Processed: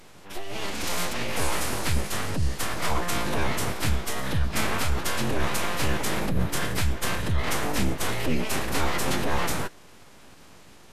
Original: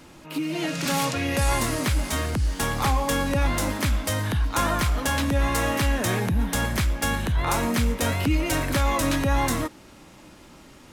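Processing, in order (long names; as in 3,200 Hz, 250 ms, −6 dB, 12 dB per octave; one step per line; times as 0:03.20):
full-wave rectification
phase-vocoder pitch shift with formants kept −8 semitones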